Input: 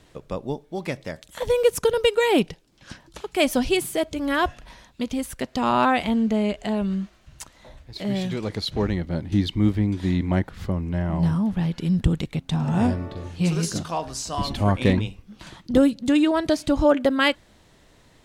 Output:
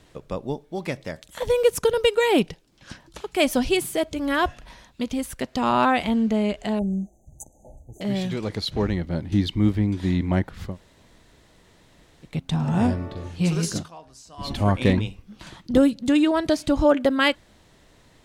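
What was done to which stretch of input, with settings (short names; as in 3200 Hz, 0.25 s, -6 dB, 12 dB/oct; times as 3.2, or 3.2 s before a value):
6.79–8.01 brick-wall FIR band-stop 890–6000 Hz
10.7–12.3 room tone, crossfade 0.16 s
13.77–14.51 dip -16 dB, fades 0.13 s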